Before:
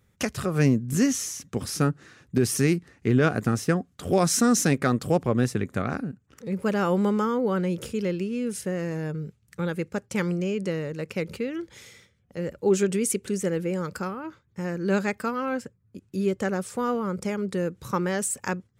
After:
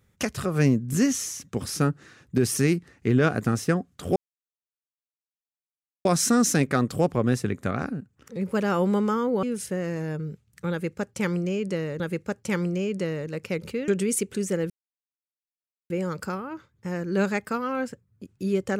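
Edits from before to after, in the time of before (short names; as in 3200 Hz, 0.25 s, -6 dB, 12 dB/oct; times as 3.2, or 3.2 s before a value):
4.16 insert silence 1.89 s
7.54–8.38 cut
9.66–10.95 loop, 2 plays
11.54–12.81 cut
13.63 insert silence 1.20 s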